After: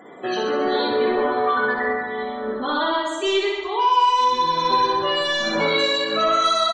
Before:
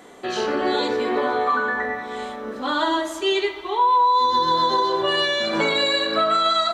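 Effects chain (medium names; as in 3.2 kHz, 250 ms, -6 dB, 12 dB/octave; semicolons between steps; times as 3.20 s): tremolo triangle 1.3 Hz, depth 35%; saturation -19.5 dBFS, distortion -13 dB; loudest bins only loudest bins 64; on a send: reverse bouncing-ball echo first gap 60 ms, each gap 1.1×, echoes 5; on the sum: trim +3 dB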